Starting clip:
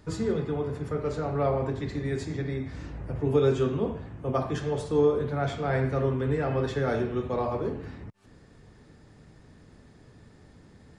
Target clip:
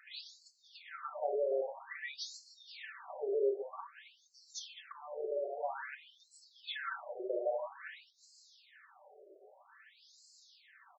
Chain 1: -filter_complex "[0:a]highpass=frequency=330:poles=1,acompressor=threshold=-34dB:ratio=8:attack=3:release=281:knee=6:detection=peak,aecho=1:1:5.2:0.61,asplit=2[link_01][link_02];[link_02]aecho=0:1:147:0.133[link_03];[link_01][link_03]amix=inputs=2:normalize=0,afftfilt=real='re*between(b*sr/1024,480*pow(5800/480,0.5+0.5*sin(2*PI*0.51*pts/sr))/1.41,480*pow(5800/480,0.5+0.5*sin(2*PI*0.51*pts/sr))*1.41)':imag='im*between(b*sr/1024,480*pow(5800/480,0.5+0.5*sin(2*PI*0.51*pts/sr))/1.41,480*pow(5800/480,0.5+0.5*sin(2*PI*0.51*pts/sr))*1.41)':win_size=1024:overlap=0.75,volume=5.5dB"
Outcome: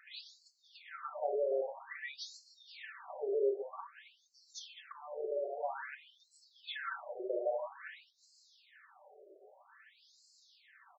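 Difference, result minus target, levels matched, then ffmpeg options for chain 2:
8,000 Hz band −4.0 dB
-filter_complex "[0:a]highpass=frequency=330:poles=1,highshelf=frequency=6400:gain=9,acompressor=threshold=-34dB:ratio=8:attack=3:release=281:knee=6:detection=peak,aecho=1:1:5.2:0.61,asplit=2[link_01][link_02];[link_02]aecho=0:1:147:0.133[link_03];[link_01][link_03]amix=inputs=2:normalize=0,afftfilt=real='re*between(b*sr/1024,480*pow(5800/480,0.5+0.5*sin(2*PI*0.51*pts/sr))/1.41,480*pow(5800/480,0.5+0.5*sin(2*PI*0.51*pts/sr))*1.41)':imag='im*between(b*sr/1024,480*pow(5800/480,0.5+0.5*sin(2*PI*0.51*pts/sr))/1.41,480*pow(5800/480,0.5+0.5*sin(2*PI*0.51*pts/sr))*1.41)':win_size=1024:overlap=0.75,volume=5.5dB"

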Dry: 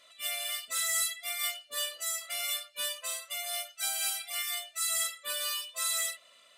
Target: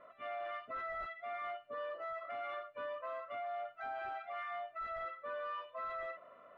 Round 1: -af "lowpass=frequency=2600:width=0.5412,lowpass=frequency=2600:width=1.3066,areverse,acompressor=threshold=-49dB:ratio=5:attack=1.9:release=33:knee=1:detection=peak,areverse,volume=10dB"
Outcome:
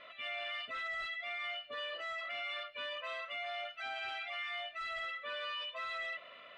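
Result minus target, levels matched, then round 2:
1,000 Hz band −6.0 dB
-af "lowpass=frequency=1300:width=0.5412,lowpass=frequency=1300:width=1.3066,areverse,acompressor=threshold=-49dB:ratio=5:attack=1.9:release=33:knee=1:detection=peak,areverse,volume=10dB"

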